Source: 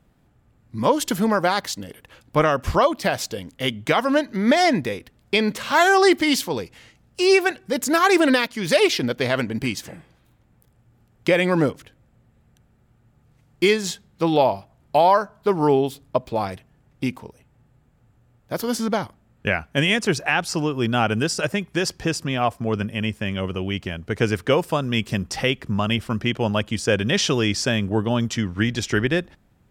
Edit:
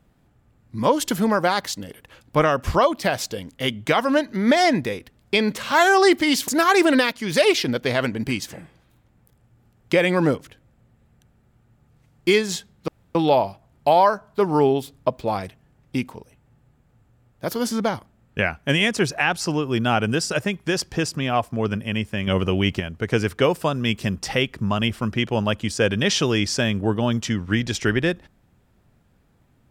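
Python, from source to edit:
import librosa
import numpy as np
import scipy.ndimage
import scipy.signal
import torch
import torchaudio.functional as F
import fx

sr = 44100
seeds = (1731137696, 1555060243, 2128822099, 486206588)

y = fx.edit(x, sr, fx.cut(start_s=6.48, length_s=1.35),
    fx.insert_room_tone(at_s=14.23, length_s=0.27),
    fx.clip_gain(start_s=23.35, length_s=0.53, db=5.5), tone=tone)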